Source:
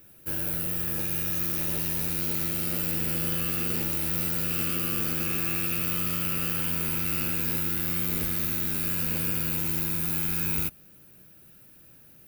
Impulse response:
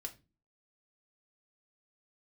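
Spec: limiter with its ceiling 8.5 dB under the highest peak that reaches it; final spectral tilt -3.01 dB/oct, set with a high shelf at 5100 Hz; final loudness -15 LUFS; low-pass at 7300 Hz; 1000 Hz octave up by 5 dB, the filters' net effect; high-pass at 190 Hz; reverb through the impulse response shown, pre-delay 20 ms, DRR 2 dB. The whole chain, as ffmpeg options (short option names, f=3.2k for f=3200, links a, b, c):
-filter_complex "[0:a]highpass=190,lowpass=7.3k,equalizer=f=1k:t=o:g=6.5,highshelf=f=5.1k:g=7,alimiter=level_in=2.5dB:limit=-24dB:level=0:latency=1,volume=-2.5dB,asplit=2[a][b];[1:a]atrim=start_sample=2205,adelay=20[c];[b][c]afir=irnorm=-1:irlink=0,volume=1dB[d];[a][d]amix=inputs=2:normalize=0,volume=18.5dB"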